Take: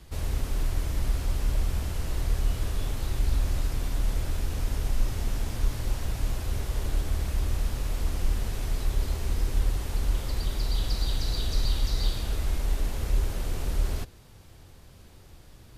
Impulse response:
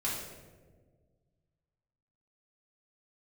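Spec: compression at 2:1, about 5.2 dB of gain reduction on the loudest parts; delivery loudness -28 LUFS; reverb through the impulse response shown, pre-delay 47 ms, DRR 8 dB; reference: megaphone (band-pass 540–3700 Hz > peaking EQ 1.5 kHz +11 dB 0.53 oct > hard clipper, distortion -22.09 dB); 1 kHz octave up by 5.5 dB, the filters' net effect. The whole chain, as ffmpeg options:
-filter_complex "[0:a]equalizer=f=1000:t=o:g=3.5,acompressor=threshold=0.0398:ratio=2,asplit=2[s0][s1];[1:a]atrim=start_sample=2205,adelay=47[s2];[s1][s2]afir=irnorm=-1:irlink=0,volume=0.211[s3];[s0][s3]amix=inputs=2:normalize=0,highpass=540,lowpass=3700,equalizer=f=1500:t=o:w=0.53:g=11,asoftclip=type=hard:threshold=0.0168,volume=5.01"

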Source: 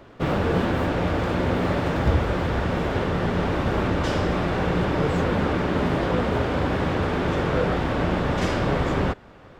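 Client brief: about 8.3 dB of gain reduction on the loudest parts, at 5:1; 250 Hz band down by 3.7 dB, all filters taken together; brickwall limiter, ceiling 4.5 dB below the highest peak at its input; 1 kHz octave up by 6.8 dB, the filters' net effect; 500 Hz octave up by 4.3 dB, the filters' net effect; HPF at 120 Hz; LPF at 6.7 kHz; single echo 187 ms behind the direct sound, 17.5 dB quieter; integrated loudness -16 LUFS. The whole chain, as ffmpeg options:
-af "highpass=120,lowpass=6700,equalizer=f=250:t=o:g=-7,equalizer=f=500:t=o:g=5,equalizer=f=1000:t=o:g=7.5,acompressor=threshold=0.0562:ratio=5,alimiter=limit=0.1:level=0:latency=1,aecho=1:1:187:0.133,volume=4.73"

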